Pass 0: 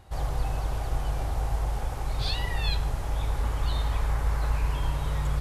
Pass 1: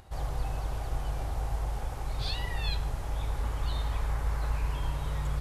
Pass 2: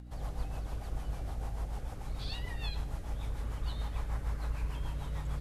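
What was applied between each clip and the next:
upward compressor, threshold -45 dBFS; trim -4 dB
rotary cabinet horn 6.7 Hz; hum 60 Hz, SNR 12 dB; trim -4 dB

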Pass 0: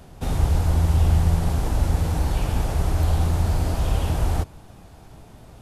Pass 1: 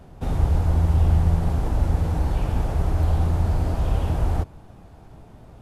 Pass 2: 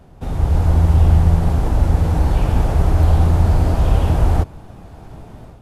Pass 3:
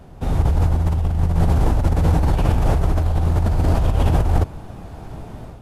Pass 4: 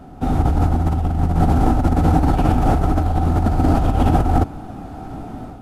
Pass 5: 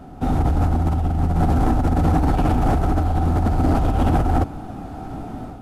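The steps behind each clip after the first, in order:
treble shelf 2.5 kHz -10.5 dB
level rider gain up to 9 dB
compressor with a negative ratio -16 dBFS, ratio -1
small resonant body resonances 270/750/1300 Hz, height 12 dB, ringing for 30 ms; trim -1 dB
saturation -10.5 dBFS, distortion -16 dB

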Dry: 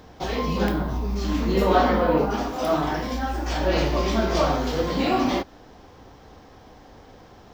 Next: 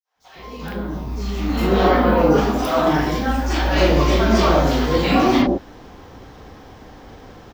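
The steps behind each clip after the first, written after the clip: fade-in on the opening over 2.29 s; three bands offset in time highs, mids, lows 40/150 ms, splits 690/5200 Hz; spectral replace 1.29–1.87 s, 540–1900 Hz both; trim +7.5 dB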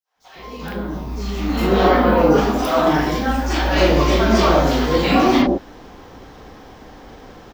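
peaking EQ 95 Hz -5.5 dB 1.1 oct; trim +1.5 dB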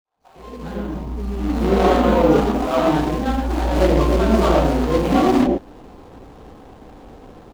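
median filter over 25 samples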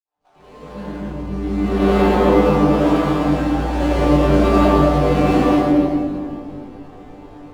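chord resonator G2 fifth, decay 0.28 s; reverberation RT60 2.5 s, pre-delay 77 ms, DRR -7.5 dB; decimation joined by straight lines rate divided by 3×; trim +5 dB

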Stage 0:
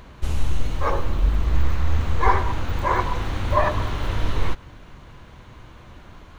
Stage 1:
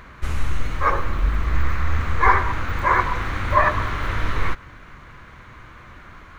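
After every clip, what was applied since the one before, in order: high-order bell 1.6 kHz +9 dB 1.3 oct; trim -1 dB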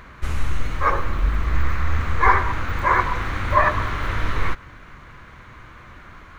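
no audible change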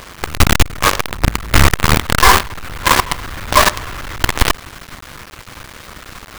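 companded quantiser 2-bit; trim -1 dB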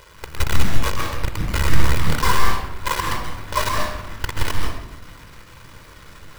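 reverberation RT60 0.85 s, pre-delay 127 ms, DRR 1 dB; trim -14.5 dB

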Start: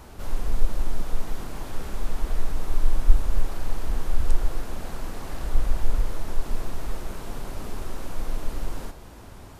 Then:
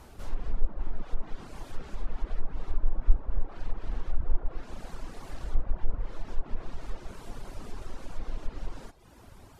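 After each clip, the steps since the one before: reverb removal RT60 0.87 s; low-pass that closes with the level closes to 1.2 kHz, closed at -13 dBFS; trim -5 dB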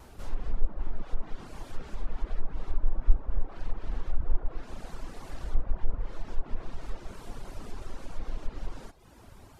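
vibrato 2.8 Hz 33 cents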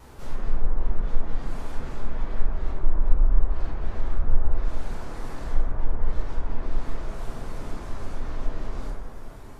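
plate-style reverb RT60 2.4 s, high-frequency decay 0.3×, DRR -5.5 dB

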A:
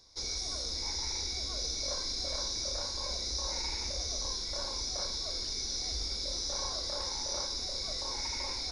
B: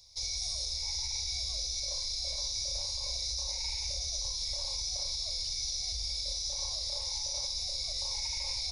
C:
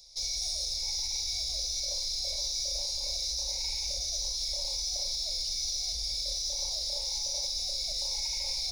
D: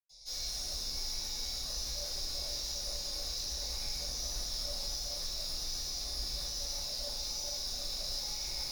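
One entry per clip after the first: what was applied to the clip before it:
FFT filter 120 Hz 0 dB, 220 Hz -23 dB, 360 Hz -27 dB, 520 Hz -7 dB, 890 Hz -6 dB, 1.5 kHz -21 dB, 2.3 kHz 0 dB, 6.3 kHz +2 dB, 11 kHz +7 dB; peak limiter -27 dBFS, peak gain reduction 6 dB; trim +1.5 dB
in parallel at -8 dB: hard clipper -39.5 dBFS, distortion -7 dB; on the sum: static phaser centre 340 Hz, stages 6; trim +1.5 dB
saturation -34.5 dBFS, distortion -11 dB; reverberation RT60 0.80 s, pre-delay 94 ms; trim +4.5 dB

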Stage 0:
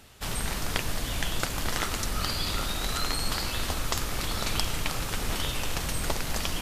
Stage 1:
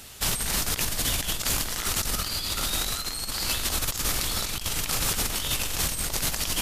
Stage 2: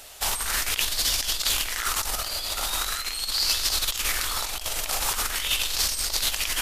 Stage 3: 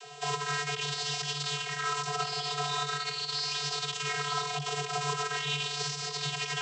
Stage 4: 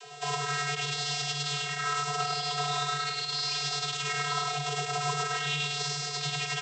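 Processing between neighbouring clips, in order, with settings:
treble shelf 3.5 kHz +11 dB; compressor with a negative ratio -28 dBFS, ratio -0.5; trim +1 dB
peaking EQ 150 Hz -14.5 dB 2.2 oct; sweeping bell 0.42 Hz 620–5100 Hz +9 dB
peak limiter -19 dBFS, peak gain reduction 11 dB; vocoder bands 32, square 145 Hz
delay 102 ms -3 dB

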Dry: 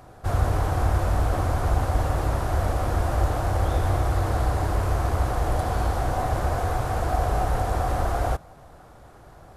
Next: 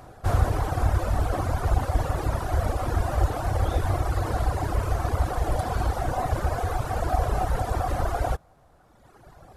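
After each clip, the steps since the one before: reverb removal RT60 1.8 s; trim +2 dB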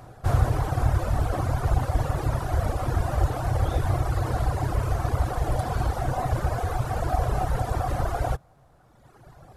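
peaking EQ 130 Hz +7.5 dB 0.48 oct; trim -1 dB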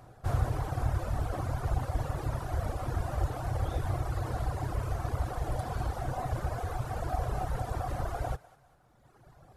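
thinning echo 198 ms, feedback 47%, high-pass 710 Hz, level -18 dB; trim -7.5 dB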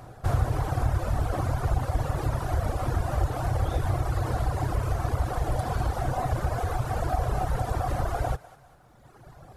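compression 1.5:1, threshold -34 dBFS, peak gain reduction 5 dB; trim +8 dB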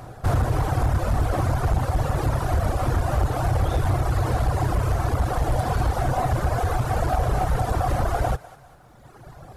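hard clipper -21 dBFS, distortion -15 dB; trim +5.5 dB

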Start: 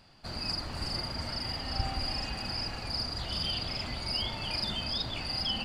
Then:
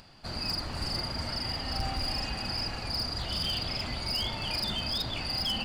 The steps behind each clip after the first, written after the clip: upward compressor, threshold -52 dBFS; hard clipper -27.5 dBFS, distortion -17 dB; trim +2 dB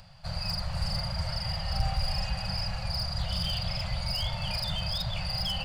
Chebyshev band-stop 190–520 Hz, order 5; bass shelf 410 Hz +8.5 dB; trim -1.5 dB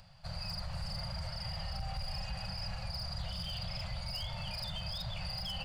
peak limiter -25 dBFS, peak gain reduction 8.5 dB; trim -5.5 dB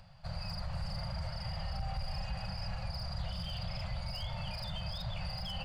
treble shelf 3.1 kHz -8 dB; trim +2 dB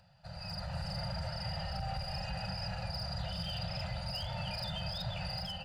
level rider gain up to 8 dB; comb of notches 1.1 kHz; trim -4 dB

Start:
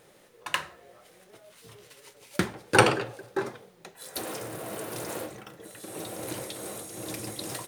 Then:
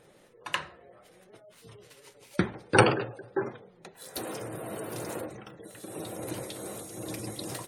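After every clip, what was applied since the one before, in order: spectral gate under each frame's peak -25 dB strong; bass shelf 470 Hz +4.5 dB; trim -2.5 dB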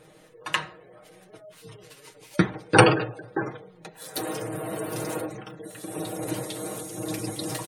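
comb 6.4 ms, depth 67%; trim +3.5 dB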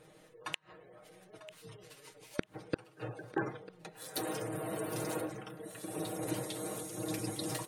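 inverted gate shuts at -12 dBFS, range -37 dB; thinning echo 946 ms, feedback 62%, level -16 dB; trim -6 dB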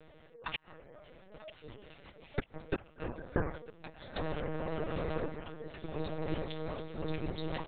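LPC vocoder at 8 kHz pitch kept; trim +2.5 dB

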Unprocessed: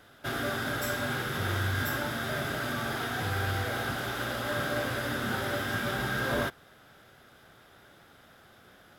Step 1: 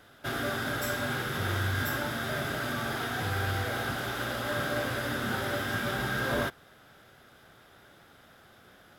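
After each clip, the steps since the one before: no audible change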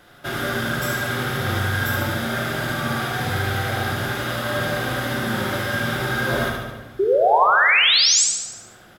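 painted sound rise, 6.99–8.24 s, 370–8300 Hz -23 dBFS; on a send: feedback delay 74 ms, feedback 55%, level -4 dB; on the sum: simulated room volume 970 m³, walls mixed, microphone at 0.91 m; trim +4.5 dB

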